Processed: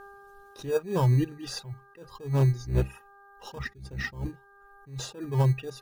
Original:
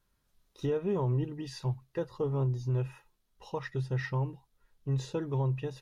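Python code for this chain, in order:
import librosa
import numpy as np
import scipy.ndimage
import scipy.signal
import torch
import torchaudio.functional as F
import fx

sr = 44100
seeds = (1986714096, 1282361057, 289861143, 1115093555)

p1 = fx.octave_divider(x, sr, octaves=1, level_db=-2.0, at=(2.64, 4.29))
p2 = fx.high_shelf(p1, sr, hz=5700.0, db=6.0)
p3 = fx.sample_hold(p2, sr, seeds[0], rate_hz=2100.0, jitter_pct=0)
p4 = p2 + (p3 * librosa.db_to_amplitude(-8.0))
p5 = fx.dmg_buzz(p4, sr, base_hz=400.0, harmonics=4, level_db=-54.0, tilt_db=-1, odd_only=False)
p6 = fx.dereverb_blind(p5, sr, rt60_s=1.3)
p7 = fx.attack_slew(p6, sr, db_per_s=150.0)
y = p7 * librosa.db_to_amplitude(6.5)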